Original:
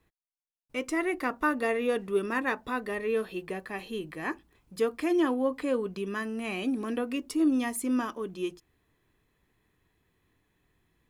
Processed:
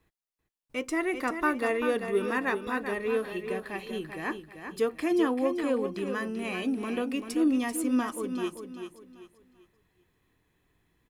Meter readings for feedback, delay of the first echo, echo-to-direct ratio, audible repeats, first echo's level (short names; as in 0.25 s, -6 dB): 32%, 0.389 s, -7.5 dB, 3, -8.0 dB